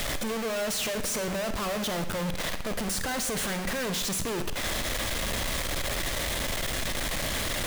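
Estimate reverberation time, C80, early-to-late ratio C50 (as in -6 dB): 0.90 s, 13.0 dB, 10.0 dB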